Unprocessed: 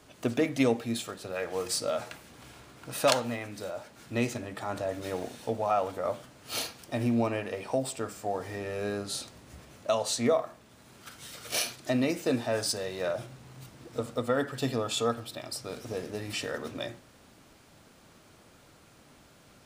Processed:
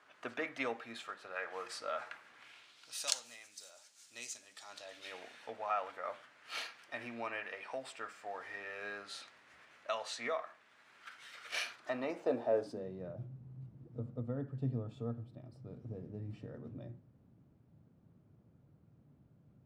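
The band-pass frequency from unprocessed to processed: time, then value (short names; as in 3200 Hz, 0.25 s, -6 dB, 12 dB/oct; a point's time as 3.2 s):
band-pass, Q 1.6
2.27 s 1500 Hz
3.09 s 6700 Hz
4.47 s 6700 Hz
5.39 s 1800 Hz
11.62 s 1800 Hz
12.53 s 490 Hz
13.07 s 130 Hz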